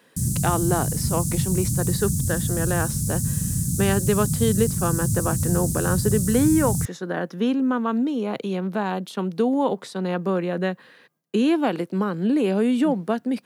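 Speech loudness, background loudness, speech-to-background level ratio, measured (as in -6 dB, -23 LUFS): -24.5 LUFS, -24.0 LUFS, -0.5 dB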